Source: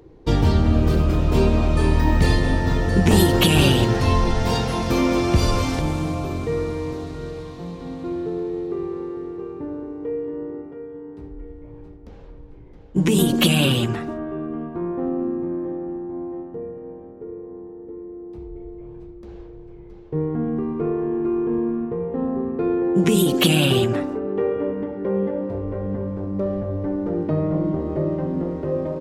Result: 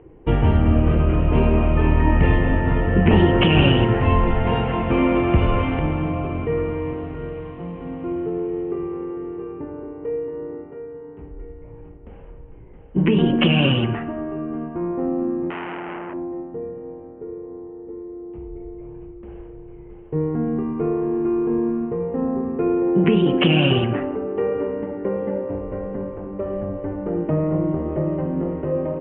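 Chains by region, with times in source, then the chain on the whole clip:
15.50–16.14 s: peaking EQ 190 Hz +7.5 dB 1.1 oct + transformer saturation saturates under 2.3 kHz
whole clip: Chebyshev low-pass 3 kHz, order 6; de-hum 97.5 Hz, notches 36; trim +2 dB

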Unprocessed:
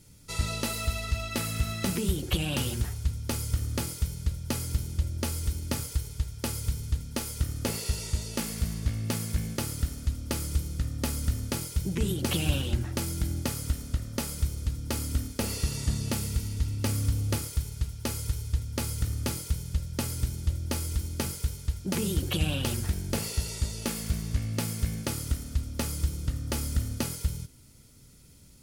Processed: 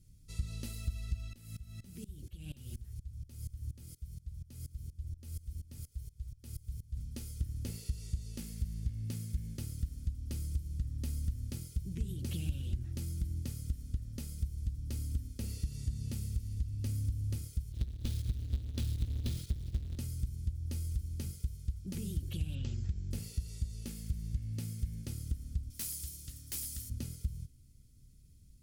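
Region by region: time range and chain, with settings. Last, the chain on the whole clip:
1.33–6.97 s: treble shelf 10 kHz +4 dB + sawtooth tremolo in dB swelling 4.2 Hz, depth 23 dB
17.72–19.98 s: square wave that keeps the level + peaking EQ 3.7 kHz +10.5 dB 0.7 oct + volume shaper 121 bpm, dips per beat 2, -10 dB, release 85 ms
22.55–23.11 s: brick-wall FIR low-pass 7.9 kHz + treble shelf 4.8 kHz -4.5 dB
25.70–26.90 s: tilt EQ +4 dB/octave + integer overflow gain 15.5 dB
whole clip: amplifier tone stack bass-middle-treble 10-0-1; compression, threshold -36 dBFS; trim +6 dB

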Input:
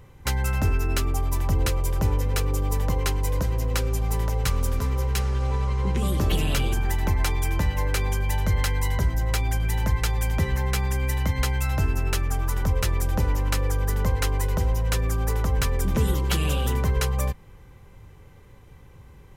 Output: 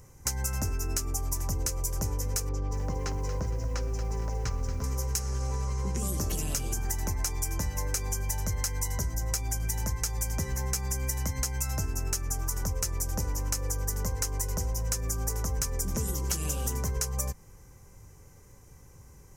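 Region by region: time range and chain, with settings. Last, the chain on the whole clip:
2.49–4.84 s: distance through air 210 m + bit-crushed delay 232 ms, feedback 35%, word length 9-bit, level -9 dB
whole clip: resonant high shelf 4.6 kHz +9.5 dB, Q 3; compression, threshold -22 dBFS; trim -4.5 dB

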